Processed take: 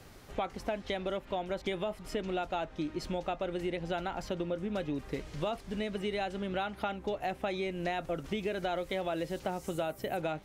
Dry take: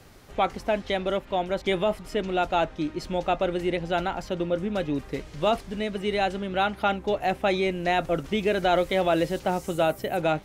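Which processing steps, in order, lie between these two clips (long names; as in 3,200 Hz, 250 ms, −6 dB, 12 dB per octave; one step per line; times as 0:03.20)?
downward compressor, threshold −29 dBFS, peak gain reduction 11 dB
level −2 dB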